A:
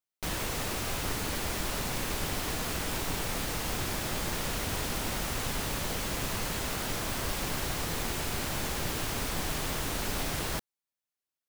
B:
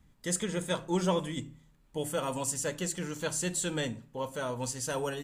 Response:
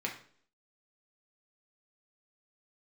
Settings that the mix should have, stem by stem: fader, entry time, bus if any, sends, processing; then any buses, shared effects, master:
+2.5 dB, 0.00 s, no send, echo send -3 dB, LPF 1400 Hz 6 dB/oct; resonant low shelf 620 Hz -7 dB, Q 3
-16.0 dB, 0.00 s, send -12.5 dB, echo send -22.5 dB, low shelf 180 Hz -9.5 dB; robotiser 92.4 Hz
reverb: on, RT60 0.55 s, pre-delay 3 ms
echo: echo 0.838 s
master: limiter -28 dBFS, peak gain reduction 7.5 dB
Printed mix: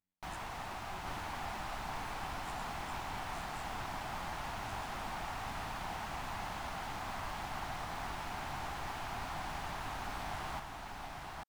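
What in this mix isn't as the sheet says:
stem A +2.5 dB -> -5.0 dB; stem B -16.0 dB -> -27.0 dB

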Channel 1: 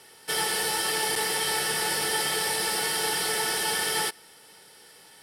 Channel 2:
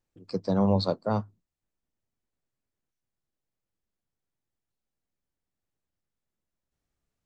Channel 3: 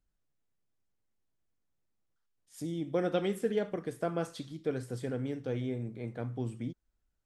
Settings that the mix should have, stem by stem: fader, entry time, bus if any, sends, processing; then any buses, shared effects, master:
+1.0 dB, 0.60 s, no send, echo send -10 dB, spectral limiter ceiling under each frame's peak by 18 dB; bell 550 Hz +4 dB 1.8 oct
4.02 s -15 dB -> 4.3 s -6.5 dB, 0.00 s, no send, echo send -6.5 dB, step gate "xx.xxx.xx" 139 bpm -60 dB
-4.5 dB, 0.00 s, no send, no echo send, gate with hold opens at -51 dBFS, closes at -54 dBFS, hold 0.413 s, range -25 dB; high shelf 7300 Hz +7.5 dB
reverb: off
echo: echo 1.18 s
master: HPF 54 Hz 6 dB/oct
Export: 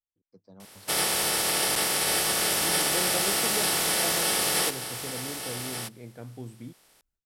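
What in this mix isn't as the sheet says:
stem 2 -15.0 dB -> -26.0 dB; master: missing HPF 54 Hz 6 dB/oct

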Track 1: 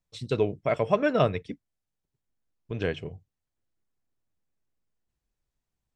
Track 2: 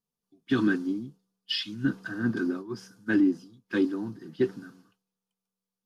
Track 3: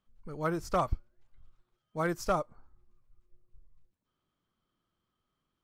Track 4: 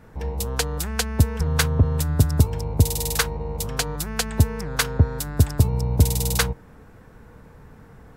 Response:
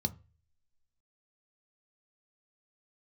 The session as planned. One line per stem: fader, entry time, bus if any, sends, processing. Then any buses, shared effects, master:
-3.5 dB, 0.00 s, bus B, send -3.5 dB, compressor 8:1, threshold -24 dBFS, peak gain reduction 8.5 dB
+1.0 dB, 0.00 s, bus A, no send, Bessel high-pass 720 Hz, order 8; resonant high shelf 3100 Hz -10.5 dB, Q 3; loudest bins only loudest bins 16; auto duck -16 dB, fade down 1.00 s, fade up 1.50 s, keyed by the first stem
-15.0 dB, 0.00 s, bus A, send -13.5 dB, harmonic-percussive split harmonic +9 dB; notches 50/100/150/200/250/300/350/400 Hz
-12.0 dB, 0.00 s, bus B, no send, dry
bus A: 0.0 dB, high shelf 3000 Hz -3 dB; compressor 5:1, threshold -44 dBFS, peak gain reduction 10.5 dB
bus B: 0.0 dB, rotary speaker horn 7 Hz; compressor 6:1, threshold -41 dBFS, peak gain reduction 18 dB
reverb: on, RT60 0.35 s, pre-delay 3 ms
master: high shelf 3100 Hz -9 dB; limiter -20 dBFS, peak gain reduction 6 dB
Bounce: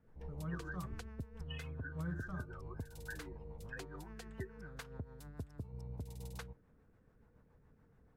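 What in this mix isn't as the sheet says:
stem 1: muted; stem 2 +1.0 dB -> -5.5 dB; stem 4 -12.0 dB -> -19.0 dB

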